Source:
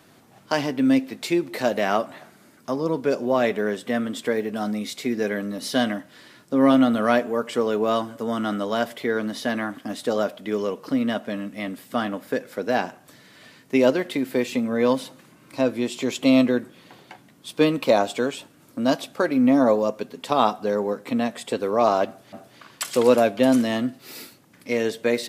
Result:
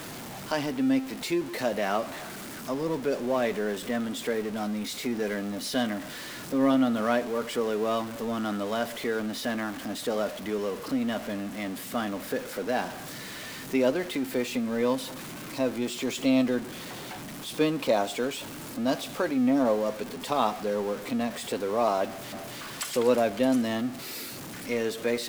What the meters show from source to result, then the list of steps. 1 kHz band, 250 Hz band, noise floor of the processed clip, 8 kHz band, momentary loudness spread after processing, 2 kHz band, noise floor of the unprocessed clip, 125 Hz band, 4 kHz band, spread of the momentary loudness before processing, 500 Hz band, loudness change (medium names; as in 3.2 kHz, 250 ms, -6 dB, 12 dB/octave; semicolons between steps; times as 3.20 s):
-5.5 dB, -5.5 dB, -40 dBFS, 0.0 dB, 13 LU, -4.5 dB, -54 dBFS, -4.5 dB, -3.0 dB, 11 LU, -5.5 dB, -6.0 dB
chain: jump at every zero crossing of -27.5 dBFS; trim -7 dB